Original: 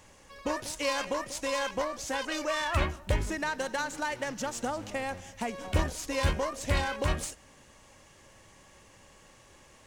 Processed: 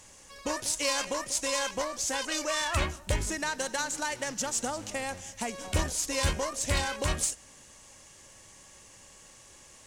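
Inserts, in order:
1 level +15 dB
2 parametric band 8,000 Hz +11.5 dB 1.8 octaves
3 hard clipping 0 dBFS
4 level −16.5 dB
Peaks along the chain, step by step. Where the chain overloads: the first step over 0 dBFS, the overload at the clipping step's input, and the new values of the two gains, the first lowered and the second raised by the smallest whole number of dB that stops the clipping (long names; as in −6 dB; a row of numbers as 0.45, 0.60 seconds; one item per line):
+2.0, +4.0, 0.0, −16.5 dBFS
step 1, 4.0 dB
step 1 +11 dB, step 4 −12.5 dB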